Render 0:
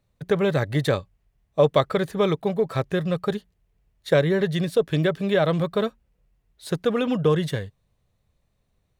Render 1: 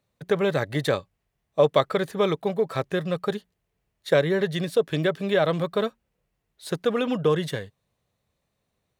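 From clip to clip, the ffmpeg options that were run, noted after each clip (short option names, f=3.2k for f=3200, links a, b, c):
-af "highpass=f=220:p=1"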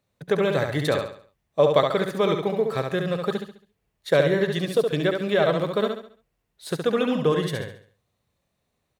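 -af "aecho=1:1:69|138|207|276|345:0.562|0.214|0.0812|0.0309|0.0117"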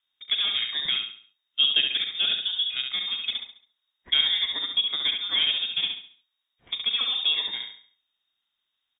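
-filter_complex "[0:a]acrusher=bits=8:mode=log:mix=0:aa=0.000001,asplit=2[a][b];[b]adelay=37,volume=-13dB[c];[a][c]amix=inputs=2:normalize=0,lowpass=f=3.2k:t=q:w=0.5098,lowpass=f=3.2k:t=q:w=0.6013,lowpass=f=3.2k:t=q:w=0.9,lowpass=f=3.2k:t=q:w=2.563,afreqshift=-3800,volume=-4dB"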